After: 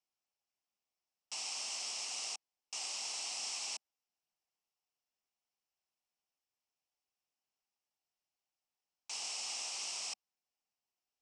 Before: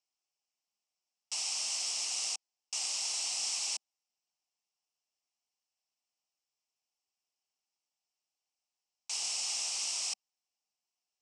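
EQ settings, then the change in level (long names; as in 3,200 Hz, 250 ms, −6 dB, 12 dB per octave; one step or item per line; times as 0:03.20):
high-shelf EQ 3,800 Hz −9 dB
0.0 dB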